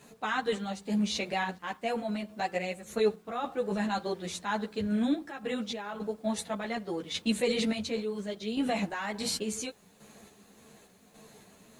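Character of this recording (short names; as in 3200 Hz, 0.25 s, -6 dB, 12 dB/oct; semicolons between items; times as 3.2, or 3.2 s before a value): random-step tremolo, depth 70%; a quantiser's noise floor 12-bit, dither none; a shimmering, thickened sound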